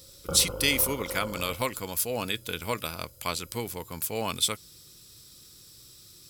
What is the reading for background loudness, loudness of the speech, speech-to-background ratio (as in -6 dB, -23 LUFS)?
-38.0 LUFS, -28.5 LUFS, 9.5 dB